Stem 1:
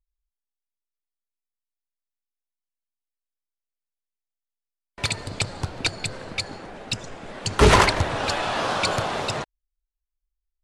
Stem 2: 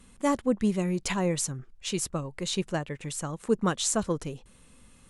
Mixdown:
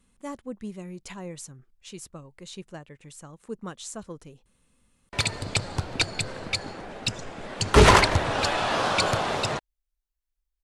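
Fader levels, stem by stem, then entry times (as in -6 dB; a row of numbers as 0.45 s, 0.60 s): 0.0 dB, -11.0 dB; 0.15 s, 0.00 s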